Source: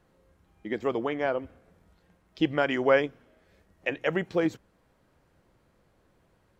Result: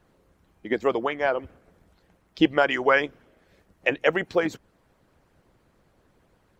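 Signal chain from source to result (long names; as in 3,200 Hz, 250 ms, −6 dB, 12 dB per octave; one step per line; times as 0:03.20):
harmonic and percussive parts rebalanced harmonic −12 dB
level +7 dB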